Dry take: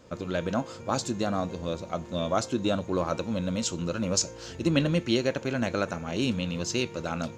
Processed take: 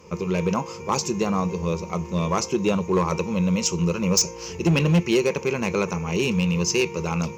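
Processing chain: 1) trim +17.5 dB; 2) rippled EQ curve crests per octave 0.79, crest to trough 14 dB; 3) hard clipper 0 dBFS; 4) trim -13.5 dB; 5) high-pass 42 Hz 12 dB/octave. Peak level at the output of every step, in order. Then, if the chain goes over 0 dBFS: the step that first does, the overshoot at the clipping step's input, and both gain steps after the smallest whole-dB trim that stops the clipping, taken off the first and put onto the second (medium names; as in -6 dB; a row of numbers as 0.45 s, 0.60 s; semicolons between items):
+7.0 dBFS, +10.0 dBFS, 0.0 dBFS, -13.5 dBFS, -10.0 dBFS; step 1, 10.0 dB; step 1 +7.5 dB, step 4 -3.5 dB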